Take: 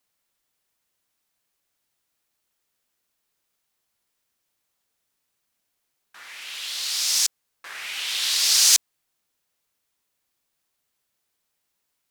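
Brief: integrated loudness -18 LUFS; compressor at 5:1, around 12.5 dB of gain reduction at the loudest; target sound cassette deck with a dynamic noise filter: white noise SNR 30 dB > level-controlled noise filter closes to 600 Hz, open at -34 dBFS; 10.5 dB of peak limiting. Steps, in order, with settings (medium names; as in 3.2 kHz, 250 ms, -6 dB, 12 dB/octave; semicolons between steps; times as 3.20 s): compression 5:1, threshold -27 dBFS; peak limiter -26 dBFS; white noise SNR 30 dB; level-controlled noise filter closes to 600 Hz, open at -34 dBFS; trim +16 dB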